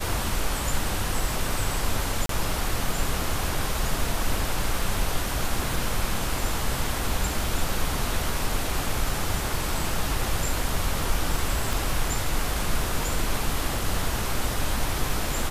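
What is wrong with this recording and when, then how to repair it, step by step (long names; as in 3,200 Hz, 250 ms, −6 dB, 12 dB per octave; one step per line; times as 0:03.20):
0:02.26–0:02.29: drop-out 33 ms
0:11.73: click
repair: click removal
repair the gap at 0:02.26, 33 ms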